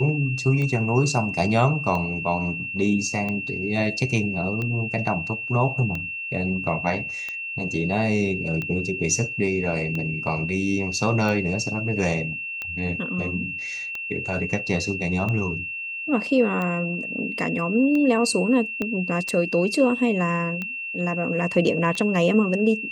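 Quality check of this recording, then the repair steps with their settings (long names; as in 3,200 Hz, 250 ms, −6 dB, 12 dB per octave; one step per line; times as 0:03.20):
scratch tick 45 rpm −17 dBFS
whistle 2,700 Hz −29 dBFS
0:18.82: click −14 dBFS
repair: click removal
notch filter 2,700 Hz, Q 30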